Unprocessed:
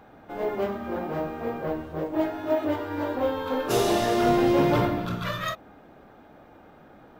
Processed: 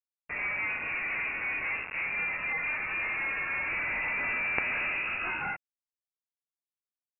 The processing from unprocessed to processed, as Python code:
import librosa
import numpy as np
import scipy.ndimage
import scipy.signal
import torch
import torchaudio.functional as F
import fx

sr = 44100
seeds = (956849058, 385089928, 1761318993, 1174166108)

y = fx.chorus_voices(x, sr, voices=2, hz=1.1, base_ms=18, depth_ms=3.9, mix_pct=35)
y = fx.quant_companded(y, sr, bits=2)
y = fx.freq_invert(y, sr, carrier_hz=2700)
y = y * librosa.db_to_amplitude(-5.5)